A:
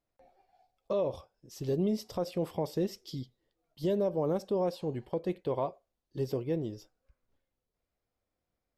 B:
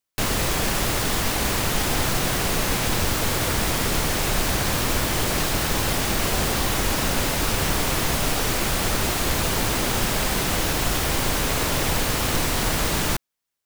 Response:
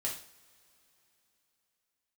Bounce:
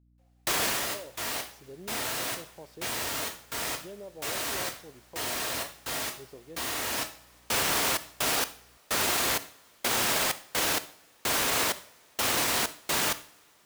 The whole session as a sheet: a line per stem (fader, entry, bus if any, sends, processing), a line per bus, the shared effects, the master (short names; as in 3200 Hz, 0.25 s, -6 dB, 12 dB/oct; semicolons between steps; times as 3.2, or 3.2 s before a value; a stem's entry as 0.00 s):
-12.5 dB, 0.00 s, no send, low shelf 180 Hz -12 dB; hum 60 Hz, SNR 14 dB
+3.0 dB, 0.00 s, send -14.5 dB, HPF 570 Hz 6 dB/oct; step gate "..xx.x..xx" 64 bpm -60 dB; auto duck -18 dB, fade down 0.35 s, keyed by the first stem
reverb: on, pre-delay 3 ms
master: limiter -17 dBFS, peak gain reduction 8.5 dB